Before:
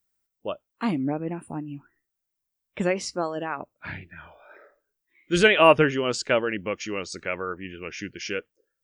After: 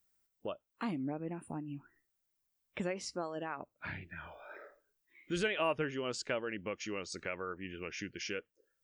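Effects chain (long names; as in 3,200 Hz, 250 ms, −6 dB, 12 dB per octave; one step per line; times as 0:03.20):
downward compressor 2 to 1, threshold −44 dBFS, peak gain reduction 18 dB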